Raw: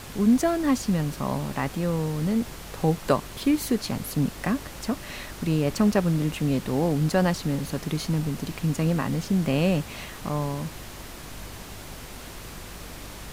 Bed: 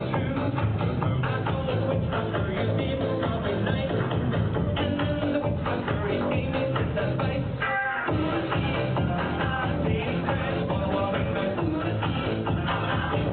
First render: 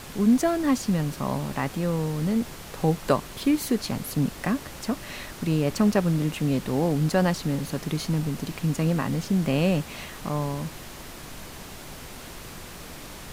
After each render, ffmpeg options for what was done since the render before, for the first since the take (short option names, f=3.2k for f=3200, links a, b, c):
-af "bandreject=f=50:t=h:w=4,bandreject=f=100:t=h:w=4"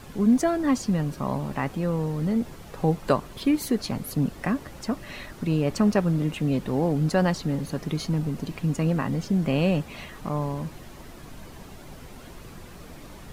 -af "afftdn=nr=9:nf=-41"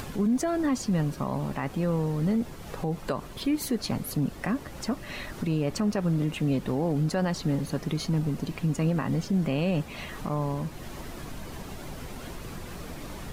-af "acompressor=mode=upward:threshold=-31dB:ratio=2.5,alimiter=limit=-18.5dB:level=0:latency=1:release=87"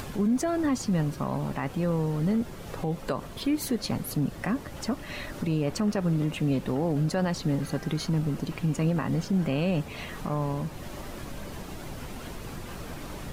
-filter_complex "[1:a]volume=-22dB[a];[0:a][a]amix=inputs=2:normalize=0"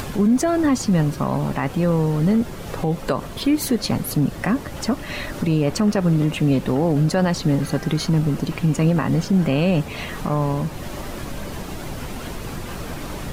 -af "volume=8dB"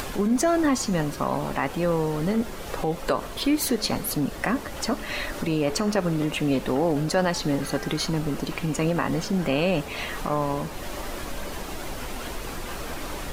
-af "equalizer=f=130:t=o:w=1.8:g=-11,bandreject=f=215.2:t=h:w=4,bandreject=f=430.4:t=h:w=4,bandreject=f=645.6:t=h:w=4,bandreject=f=860.8:t=h:w=4,bandreject=f=1.076k:t=h:w=4,bandreject=f=1.2912k:t=h:w=4,bandreject=f=1.5064k:t=h:w=4,bandreject=f=1.7216k:t=h:w=4,bandreject=f=1.9368k:t=h:w=4,bandreject=f=2.152k:t=h:w=4,bandreject=f=2.3672k:t=h:w=4,bandreject=f=2.5824k:t=h:w=4,bandreject=f=2.7976k:t=h:w=4,bandreject=f=3.0128k:t=h:w=4,bandreject=f=3.228k:t=h:w=4,bandreject=f=3.4432k:t=h:w=4,bandreject=f=3.6584k:t=h:w=4,bandreject=f=3.8736k:t=h:w=4,bandreject=f=4.0888k:t=h:w=4,bandreject=f=4.304k:t=h:w=4,bandreject=f=4.5192k:t=h:w=4,bandreject=f=4.7344k:t=h:w=4,bandreject=f=4.9496k:t=h:w=4,bandreject=f=5.1648k:t=h:w=4,bandreject=f=5.38k:t=h:w=4,bandreject=f=5.5952k:t=h:w=4,bandreject=f=5.8104k:t=h:w=4,bandreject=f=6.0256k:t=h:w=4,bandreject=f=6.2408k:t=h:w=4,bandreject=f=6.456k:t=h:w=4,bandreject=f=6.6712k:t=h:w=4,bandreject=f=6.8864k:t=h:w=4,bandreject=f=7.1016k:t=h:w=4"